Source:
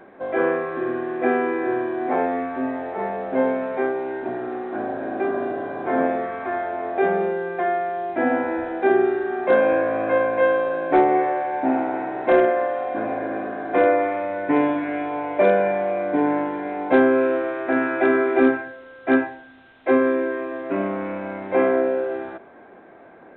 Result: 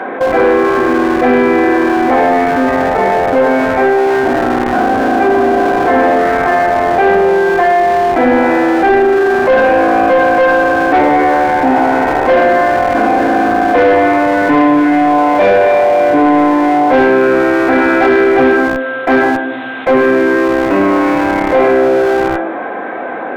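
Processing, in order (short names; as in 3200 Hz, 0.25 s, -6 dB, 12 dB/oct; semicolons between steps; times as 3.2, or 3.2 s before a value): HPF 140 Hz 12 dB/oct; shoebox room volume 1000 m³, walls furnished, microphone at 2 m; in parallel at -10 dB: Schmitt trigger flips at -24.5 dBFS; on the sum: overdrive pedal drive 19 dB, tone 1900 Hz, clips at -1.5 dBFS; fast leveller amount 50%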